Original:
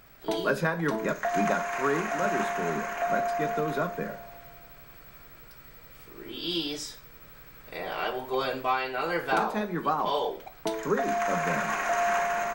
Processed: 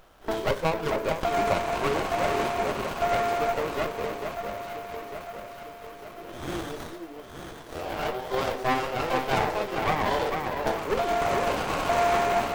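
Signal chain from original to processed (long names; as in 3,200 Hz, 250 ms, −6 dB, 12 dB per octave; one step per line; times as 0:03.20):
high-pass filter 470 Hz 12 dB per octave
on a send: delay that swaps between a low-pass and a high-pass 450 ms, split 1,400 Hz, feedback 73%, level −4.5 dB
on the sum: windowed peak hold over 17 samples
level +4 dB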